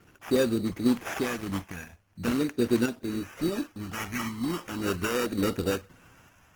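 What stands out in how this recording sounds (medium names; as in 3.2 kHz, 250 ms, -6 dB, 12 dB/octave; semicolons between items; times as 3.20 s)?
phasing stages 2, 0.42 Hz, lowest notch 450–3200 Hz; random-step tremolo; aliases and images of a low sample rate 4.2 kHz, jitter 0%; Opus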